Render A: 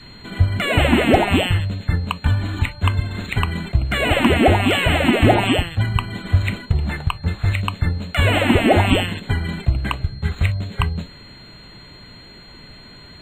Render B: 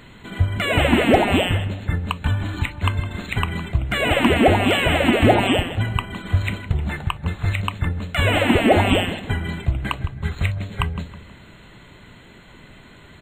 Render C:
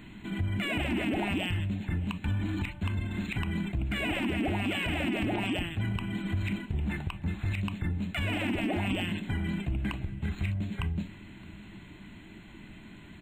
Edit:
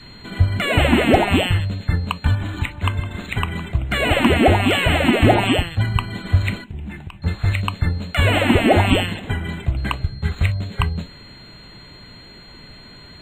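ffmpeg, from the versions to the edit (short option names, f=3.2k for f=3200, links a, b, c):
-filter_complex "[1:a]asplit=2[a][b];[0:a]asplit=4[c][d][e][f];[c]atrim=end=2.352[g];[a]atrim=start=2.348:end=3.912[h];[d]atrim=start=3.908:end=6.642[i];[2:a]atrim=start=6.638:end=7.222[j];[e]atrim=start=7.218:end=9.162[k];[b]atrim=start=9.158:end=9.772[l];[f]atrim=start=9.768[m];[g][h]acrossfade=d=0.004:c1=hsin:c2=hsin[n];[n][i]acrossfade=d=0.004:c1=hsin:c2=hsin[o];[o][j]acrossfade=d=0.004:c1=hsin:c2=hsin[p];[p][k]acrossfade=d=0.004:c1=hsin:c2=hsin[q];[q][l]acrossfade=d=0.004:c1=hsin:c2=hsin[r];[r][m]acrossfade=d=0.004:c1=hsin:c2=hsin"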